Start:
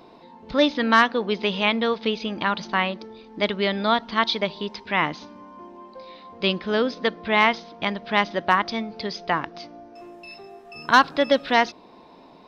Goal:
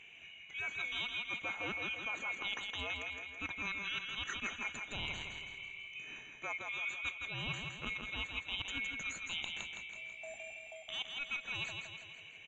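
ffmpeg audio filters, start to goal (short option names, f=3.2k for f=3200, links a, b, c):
-af "afftfilt=real='real(if(lt(b,920),b+92*(1-2*mod(floor(b/92),2)),b),0)':imag='imag(if(lt(b,920),b+92*(1-2*mod(floor(b/92),2)),b),0)':win_size=2048:overlap=0.75,alimiter=limit=-10.5dB:level=0:latency=1:release=366,lowpass=f=3.3k:p=1,areverse,acompressor=threshold=-32dB:ratio=16,areverse,aecho=1:1:164|328|492|656|820|984|1148:0.596|0.316|0.167|0.0887|0.047|0.0249|0.0132,volume=-5dB"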